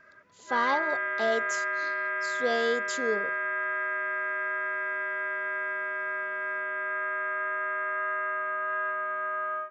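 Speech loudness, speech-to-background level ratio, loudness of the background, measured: −31.0 LKFS, −1.0 dB, −30.0 LKFS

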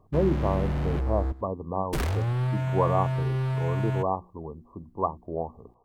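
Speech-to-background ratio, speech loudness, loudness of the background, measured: −1.5 dB, −30.5 LKFS, −29.0 LKFS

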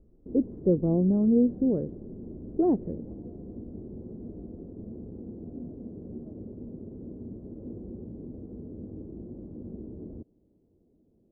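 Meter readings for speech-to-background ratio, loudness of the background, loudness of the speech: 16.0 dB, −42.0 LKFS, −26.0 LKFS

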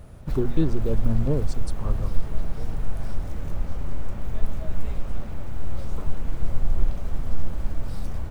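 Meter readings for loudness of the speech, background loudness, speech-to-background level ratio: −29.0 LKFS, −33.5 LKFS, 4.5 dB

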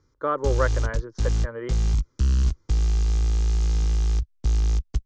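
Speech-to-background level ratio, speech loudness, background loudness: −4.0 dB, −29.5 LKFS, −25.5 LKFS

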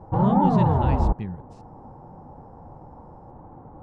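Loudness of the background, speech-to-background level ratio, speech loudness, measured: −22.0 LKFS, −4.5 dB, −26.5 LKFS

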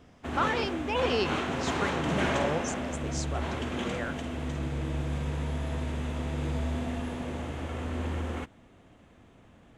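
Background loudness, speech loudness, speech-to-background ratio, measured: −32.5 LKFS, −34.0 LKFS, −1.5 dB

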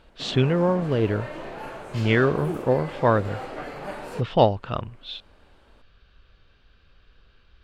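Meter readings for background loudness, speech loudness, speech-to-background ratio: −36.0 LKFS, −23.5 LKFS, 12.5 dB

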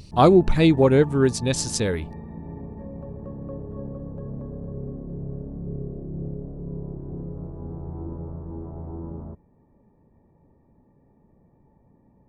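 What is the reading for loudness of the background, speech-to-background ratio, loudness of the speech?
−35.5 LKFS, 16.5 dB, −19.0 LKFS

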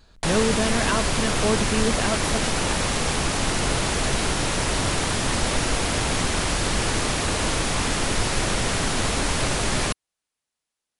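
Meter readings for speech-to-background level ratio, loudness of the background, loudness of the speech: −3.0 dB, −23.5 LKFS, −26.5 LKFS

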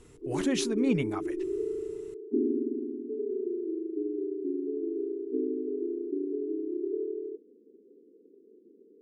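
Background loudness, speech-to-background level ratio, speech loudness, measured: −33.5 LKFS, 3.0 dB, −30.5 LKFS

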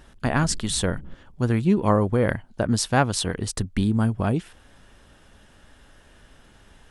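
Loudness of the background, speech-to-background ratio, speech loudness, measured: −42.5 LKFS, 19.0 dB, −23.5 LKFS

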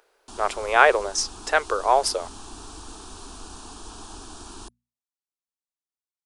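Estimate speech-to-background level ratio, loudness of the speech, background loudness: 19.5 dB, −22.0 LKFS, −41.5 LKFS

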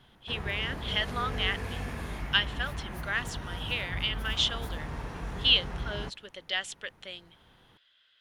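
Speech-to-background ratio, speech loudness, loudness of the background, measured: 7.5 dB, −30.5 LKFS, −38.0 LKFS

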